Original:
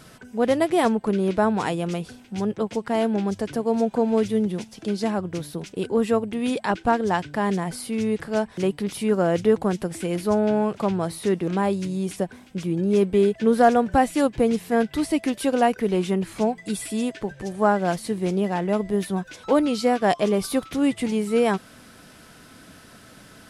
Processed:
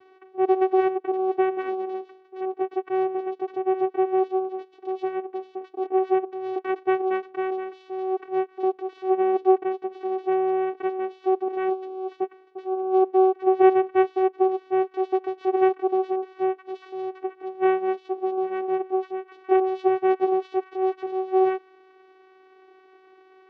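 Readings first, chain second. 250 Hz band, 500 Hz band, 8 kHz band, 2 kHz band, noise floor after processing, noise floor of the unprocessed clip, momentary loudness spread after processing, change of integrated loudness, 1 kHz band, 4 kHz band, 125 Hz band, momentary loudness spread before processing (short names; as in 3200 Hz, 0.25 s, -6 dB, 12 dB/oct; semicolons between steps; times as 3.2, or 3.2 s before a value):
-5.0 dB, +0.5 dB, under -35 dB, -6.0 dB, -55 dBFS, -49 dBFS, 12 LU, -1.5 dB, +0.5 dB, under -10 dB, under -25 dB, 8 LU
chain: vocoder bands 4, saw 377 Hz; air absorption 310 m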